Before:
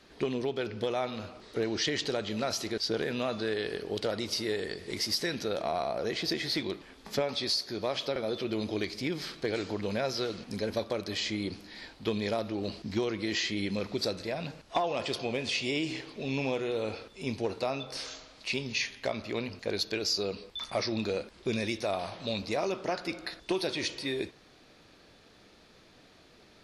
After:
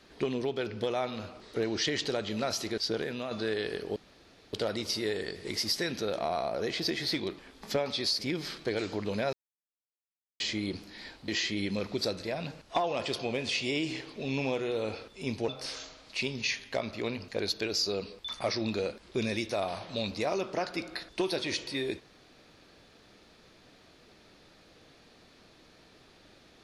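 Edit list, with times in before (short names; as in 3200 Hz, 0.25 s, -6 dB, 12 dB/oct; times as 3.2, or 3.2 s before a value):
2.84–3.31 fade out, to -6.5 dB
3.96 insert room tone 0.57 s
7.62–8.96 cut
10.1–11.17 mute
12.05–13.28 cut
17.48–17.79 cut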